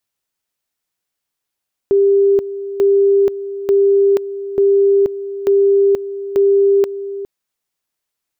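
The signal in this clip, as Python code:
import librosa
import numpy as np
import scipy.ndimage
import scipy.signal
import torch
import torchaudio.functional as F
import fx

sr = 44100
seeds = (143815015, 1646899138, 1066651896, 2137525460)

y = fx.two_level_tone(sr, hz=397.0, level_db=-8.5, drop_db=13.5, high_s=0.48, low_s=0.41, rounds=6)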